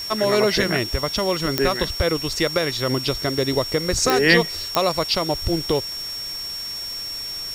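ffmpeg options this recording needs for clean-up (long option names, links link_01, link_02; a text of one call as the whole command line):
ffmpeg -i in.wav -af "adeclick=threshold=4,bandreject=frequency=5500:width=30,afwtdn=0.011" out.wav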